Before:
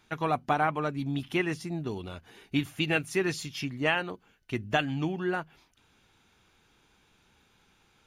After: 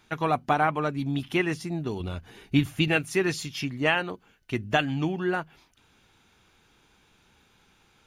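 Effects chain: 2.00–2.88 s: bass shelf 170 Hz +9.5 dB; trim +3 dB

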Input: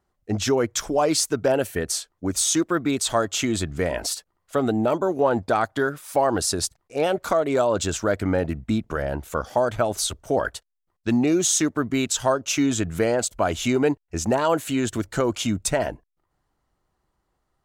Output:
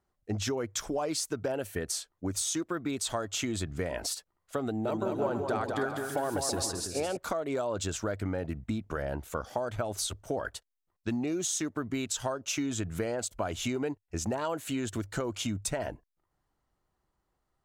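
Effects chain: dynamic bell 100 Hz, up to +6 dB, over -49 dBFS, Q 7.6; compression, threshold -23 dBFS, peak gain reduction 8 dB; 4.65–7.17 s: bouncing-ball echo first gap 200 ms, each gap 0.65×, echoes 5; trim -5.5 dB

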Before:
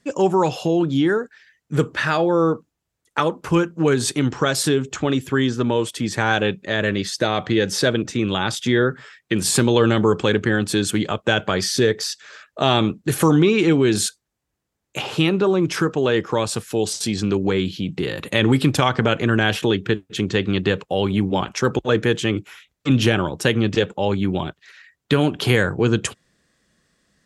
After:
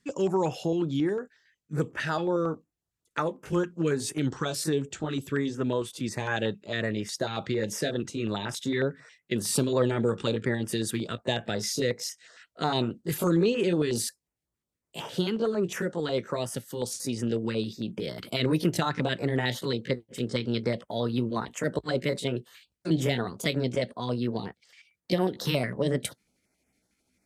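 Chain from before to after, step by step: pitch bend over the whole clip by +4 st starting unshifted; step-sequenced notch 11 Hz 630–4100 Hz; trim -7 dB

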